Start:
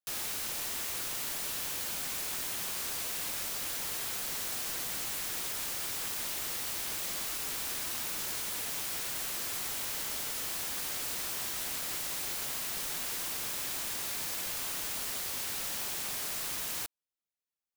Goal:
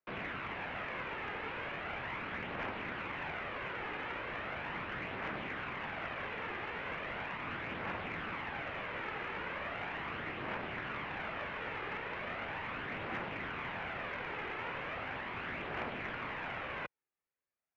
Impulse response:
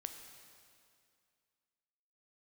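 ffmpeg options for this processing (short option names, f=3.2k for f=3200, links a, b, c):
-af "highpass=f=230:t=q:w=0.5412,highpass=f=230:t=q:w=1.307,lowpass=f=2.6k:t=q:w=0.5176,lowpass=f=2.6k:t=q:w=0.7071,lowpass=f=2.6k:t=q:w=1.932,afreqshift=-150,aphaser=in_gain=1:out_gain=1:delay=2.5:decay=0.33:speed=0.38:type=triangular,aeval=exprs='0.0282*(cos(1*acos(clip(val(0)/0.0282,-1,1)))-cos(1*PI/2))+0.00224*(cos(3*acos(clip(val(0)/0.0282,-1,1)))-cos(3*PI/2))':c=same,volume=6.5dB"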